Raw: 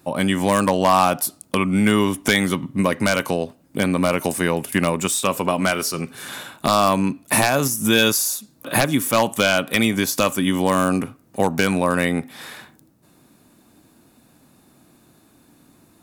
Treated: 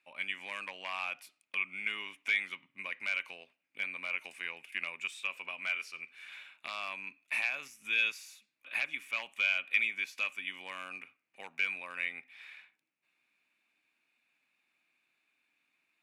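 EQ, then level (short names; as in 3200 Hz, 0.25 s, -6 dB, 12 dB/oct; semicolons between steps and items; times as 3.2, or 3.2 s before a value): band-pass 2400 Hz, Q 6.8; -3.0 dB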